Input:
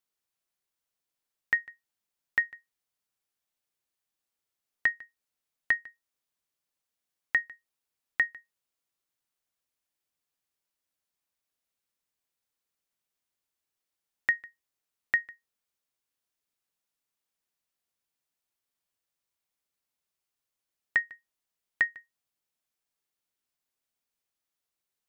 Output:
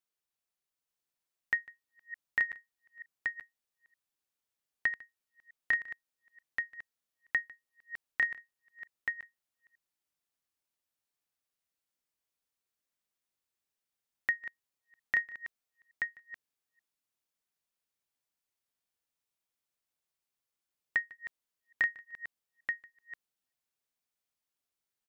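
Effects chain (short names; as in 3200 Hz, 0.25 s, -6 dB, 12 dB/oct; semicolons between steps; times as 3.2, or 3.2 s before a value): reverse delay 0.306 s, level -13 dB; echo 0.88 s -4 dB; gain -4.5 dB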